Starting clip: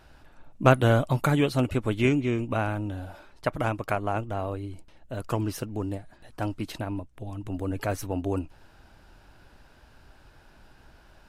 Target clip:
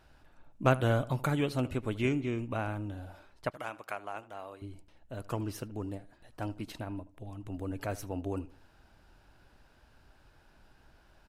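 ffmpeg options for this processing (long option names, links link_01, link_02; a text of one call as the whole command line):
ffmpeg -i in.wav -filter_complex "[0:a]asettb=1/sr,asplit=3[link_01][link_02][link_03];[link_01]atrim=end=3.504[link_04];[link_02]atrim=start=3.5:end=4.62,asetpts=PTS-STARTPTS,afade=type=in:duration=0.004:curve=qsin,afade=type=out:start_time=1.116:duration=0.004:curve=qsin,highpass=frequency=980:poles=1[link_05];[link_03]atrim=start=4.616[link_06];[link_04][link_05]acrossfade=duration=0.004:curve1=hsin:curve2=qsin[link_07];[link_07][link_06]acrossfade=duration=0.004:curve1=qsin:curve2=hsin,asplit=2[link_08][link_09];[link_09]adelay=77,lowpass=frequency=2800:poles=1,volume=-18dB,asplit=2[link_10][link_11];[link_11]adelay=77,lowpass=frequency=2800:poles=1,volume=0.32,asplit=2[link_12][link_13];[link_13]adelay=77,lowpass=frequency=2800:poles=1,volume=0.32[link_14];[link_08][link_10][link_12][link_14]amix=inputs=4:normalize=0,volume=-7dB" out.wav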